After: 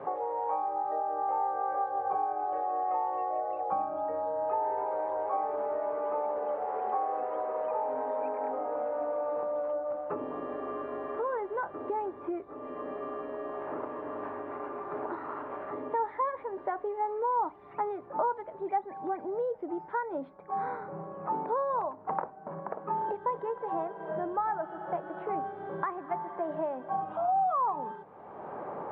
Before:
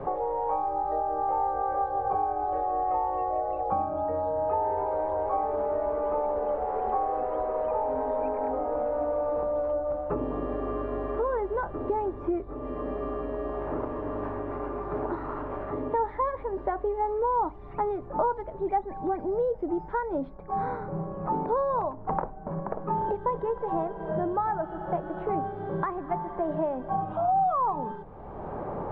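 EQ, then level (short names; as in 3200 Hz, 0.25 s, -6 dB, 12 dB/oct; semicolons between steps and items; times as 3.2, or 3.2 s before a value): Bessel high-pass 170 Hz, order 2; LPF 2600 Hz 12 dB/oct; tilt +2.5 dB/oct; -2.0 dB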